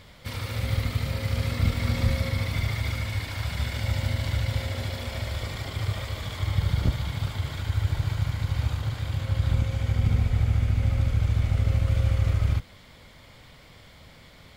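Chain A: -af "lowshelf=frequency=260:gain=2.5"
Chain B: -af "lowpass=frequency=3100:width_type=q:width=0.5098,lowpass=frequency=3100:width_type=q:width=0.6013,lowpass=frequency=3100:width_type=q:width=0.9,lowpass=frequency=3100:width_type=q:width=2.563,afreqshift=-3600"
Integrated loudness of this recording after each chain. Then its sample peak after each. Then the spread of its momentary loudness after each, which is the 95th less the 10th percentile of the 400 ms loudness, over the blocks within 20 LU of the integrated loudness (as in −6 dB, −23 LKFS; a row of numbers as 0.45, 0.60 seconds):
−25.0, −22.0 LKFS; −8.5, −10.0 dBFS; 8, 9 LU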